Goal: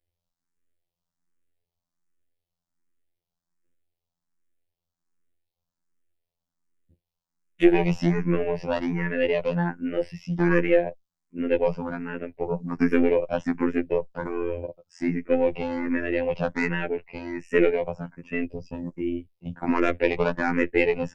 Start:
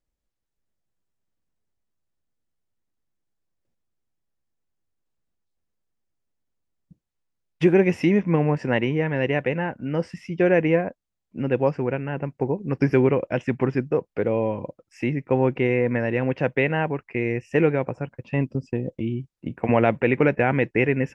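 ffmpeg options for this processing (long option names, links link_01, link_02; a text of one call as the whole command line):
ffmpeg -i in.wav -filter_complex "[0:a]aeval=exprs='0.631*(cos(1*acos(clip(val(0)/0.631,-1,1)))-cos(1*PI/2))+0.0891*(cos(4*acos(clip(val(0)/0.631,-1,1)))-cos(4*PI/2))':channel_layout=same,afftfilt=real='hypot(re,im)*cos(PI*b)':imag='0':win_size=2048:overlap=0.75,asplit=2[link_01][link_02];[link_02]afreqshift=1.3[link_03];[link_01][link_03]amix=inputs=2:normalize=1,volume=5dB" out.wav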